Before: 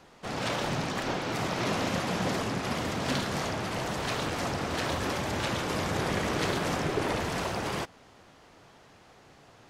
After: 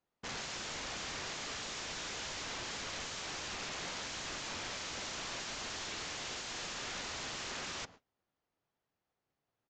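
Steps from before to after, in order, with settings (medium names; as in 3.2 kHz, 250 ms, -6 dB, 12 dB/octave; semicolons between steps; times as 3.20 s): integer overflow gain 31.5 dB; resampled via 16 kHz; gate -50 dBFS, range -29 dB; trim -4 dB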